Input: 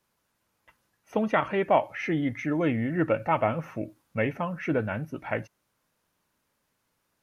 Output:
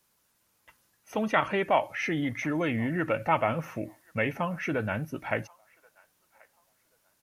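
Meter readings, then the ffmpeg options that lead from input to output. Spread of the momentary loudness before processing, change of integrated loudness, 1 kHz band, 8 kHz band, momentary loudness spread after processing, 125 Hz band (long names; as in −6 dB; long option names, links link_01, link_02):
9 LU, −1.5 dB, −0.5 dB, can't be measured, 9 LU, −2.0 dB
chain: -filter_complex "[0:a]highshelf=frequency=3900:gain=9.5,acrossover=split=720[link_01][link_02];[link_01]alimiter=limit=-23.5dB:level=0:latency=1[link_03];[link_02]asplit=2[link_04][link_05];[link_05]adelay=1082,lowpass=frequency=1000:poles=1,volume=-20.5dB,asplit=2[link_06][link_07];[link_07]adelay=1082,lowpass=frequency=1000:poles=1,volume=0.35,asplit=2[link_08][link_09];[link_09]adelay=1082,lowpass=frequency=1000:poles=1,volume=0.35[link_10];[link_04][link_06][link_08][link_10]amix=inputs=4:normalize=0[link_11];[link_03][link_11]amix=inputs=2:normalize=0"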